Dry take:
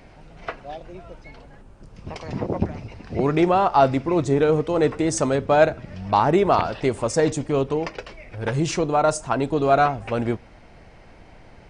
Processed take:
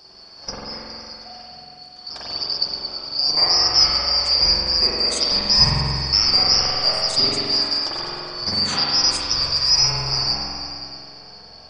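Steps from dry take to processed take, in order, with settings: four-band scrambler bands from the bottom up 2341; repeats that get brighter 0.104 s, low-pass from 750 Hz, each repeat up 1 oct, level -6 dB; spring tank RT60 2.2 s, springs 45 ms, chirp 70 ms, DRR -7.5 dB

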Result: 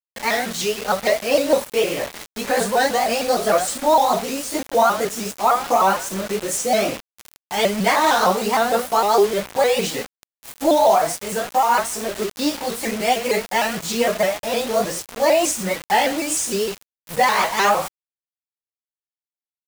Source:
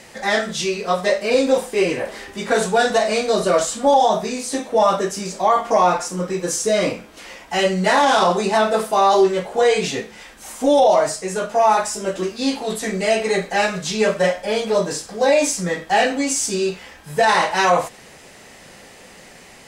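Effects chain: repeated pitch sweeps +3 st, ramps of 0.153 s; bit-crush 5-bit

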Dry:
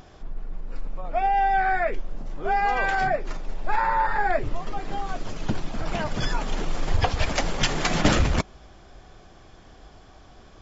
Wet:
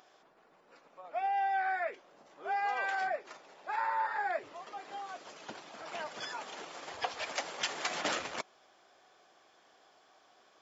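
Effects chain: HPF 530 Hz 12 dB/oct; gain -9 dB

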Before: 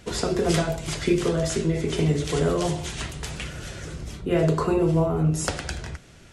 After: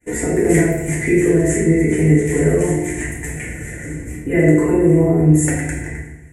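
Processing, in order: expander -42 dBFS; EQ curve 120 Hz 0 dB, 320 Hz +6 dB, 790 Hz -3 dB, 1300 Hz -13 dB, 1900 Hz +14 dB, 3300 Hz -18 dB, 4900 Hz -21 dB, 7300 Hz +8 dB; FDN reverb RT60 0.89 s, low-frequency decay 1.4×, high-frequency decay 0.7×, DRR -4 dB; gain -2 dB

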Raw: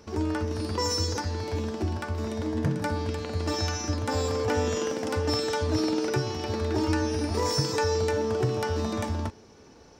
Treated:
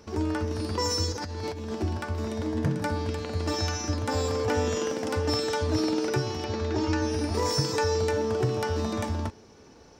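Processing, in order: 1.12–1.74 negative-ratio compressor -34 dBFS, ratio -1; 6.44–7.02 Chebyshev low-pass 7000 Hz, order 4

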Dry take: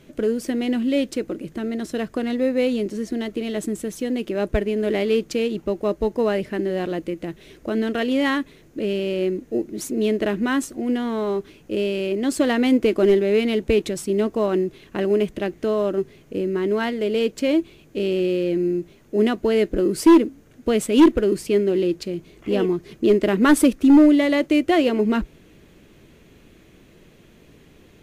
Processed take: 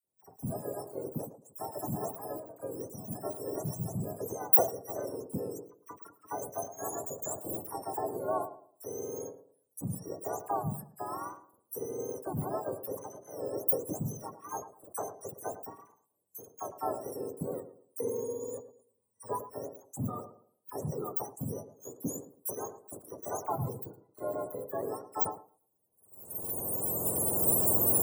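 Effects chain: spectrum mirrored in octaves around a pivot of 1100 Hz; recorder AGC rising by 11 dB/s; 17.57–19.36 ripple EQ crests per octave 0.95, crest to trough 14 dB; limiter -17 dBFS, peak gain reduction 11.5 dB; inverse Chebyshev band-stop 2200–4900 Hz, stop band 60 dB; gate -37 dBFS, range -34 dB; tilt +3.5 dB/oct; dispersion lows, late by 41 ms, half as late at 1700 Hz; on a send: tape echo 0.11 s, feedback 34%, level -11 dB, low-pass 1100 Hz; on the sum: sustainer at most 150 dB/s

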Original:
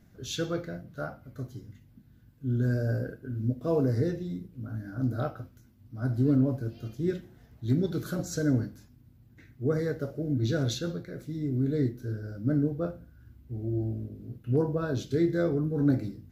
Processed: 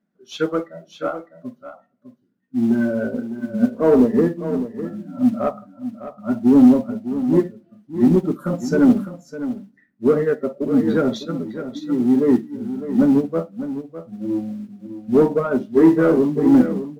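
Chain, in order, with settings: spectral noise reduction 19 dB; resonant low shelf 140 Hz -13 dB, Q 3; notches 50/100/150 Hz; modulation noise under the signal 28 dB; overdrive pedal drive 15 dB, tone 1100 Hz, clips at -11.5 dBFS; in parallel at -5 dB: soft clip -23.5 dBFS, distortion -11 dB; on the sum: echo 0.581 s -8 dB; on a send at -22 dB: reverb RT60 0.55 s, pre-delay 5 ms; on the sum: speed mistake 25 fps video run at 24 fps; upward expander 1.5:1, over -36 dBFS; gain +8 dB

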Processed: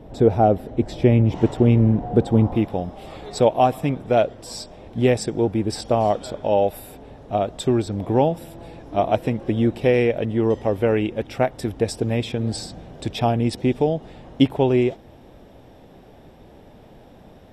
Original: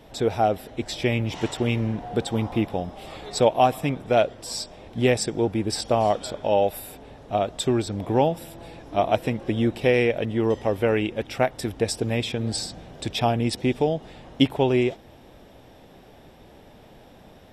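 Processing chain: tilt shelf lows +10 dB, about 1100 Hz, from 2.54 s lows +3.5 dB

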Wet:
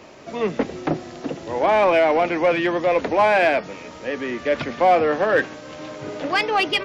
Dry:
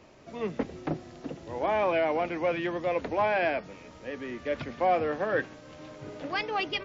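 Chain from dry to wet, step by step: low shelf 130 Hz -11.5 dB; in parallel at -3 dB: soft clip -29.5 dBFS, distortion -9 dB; on the sum: gain +7.5 dB

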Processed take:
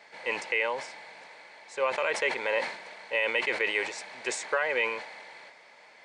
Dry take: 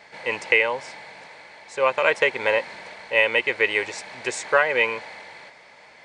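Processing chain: Bessel high-pass 250 Hz, order 2; limiter -11 dBFS, peak gain reduction 7 dB; sustainer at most 92 dB/s; gain -5 dB

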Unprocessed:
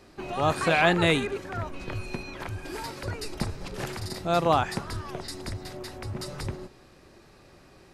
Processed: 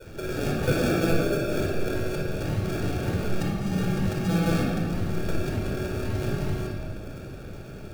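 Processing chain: 0.63–2.15 spectral gain 330–2200 Hz +8 dB; 2.4–4.62 bell 190 Hz +13.5 dB 1.3 oct; compressor 3:1, threshold -41 dBFS, peak gain reduction 22.5 dB; synth low-pass 6400 Hz, resonance Q 2.9; sample-rate reducer 1000 Hz, jitter 0%; shoebox room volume 3000 m³, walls mixed, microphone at 4.7 m; gain +4 dB

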